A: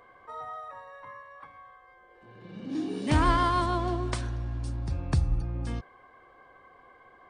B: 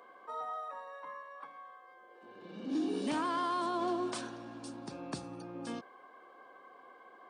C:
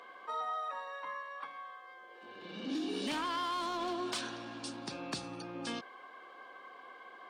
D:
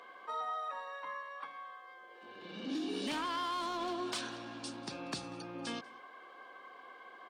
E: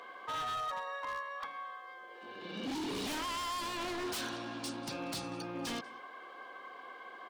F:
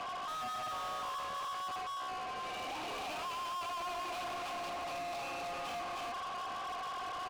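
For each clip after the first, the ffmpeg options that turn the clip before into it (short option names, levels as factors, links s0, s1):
-af "highpass=f=220:w=0.5412,highpass=f=220:w=1.3066,equalizer=f=2000:w=3.8:g=-6.5,alimiter=level_in=1.19:limit=0.0631:level=0:latency=1:release=31,volume=0.841"
-af "equalizer=f=3300:t=o:w=2.4:g=11,asoftclip=type=hard:threshold=0.0501,acompressor=threshold=0.0224:ratio=6"
-af "aecho=1:1:190:0.0668,volume=0.891"
-af "aeval=exprs='0.015*(abs(mod(val(0)/0.015+3,4)-2)-1)':c=same,volume=1.58"
-filter_complex "[0:a]asplit=3[s0][s1][s2];[s0]bandpass=f=730:t=q:w=8,volume=1[s3];[s1]bandpass=f=1090:t=q:w=8,volume=0.501[s4];[s2]bandpass=f=2440:t=q:w=8,volume=0.355[s5];[s3][s4][s5]amix=inputs=3:normalize=0,aecho=1:1:313:0.708,asplit=2[s6][s7];[s7]highpass=f=720:p=1,volume=70.8,asoftclip=type=tanh:threshold=0.02[s8];[s6][s8]amix=inputs=2:normalize=0,lowpass=f=4800:p=1,volume=0.501"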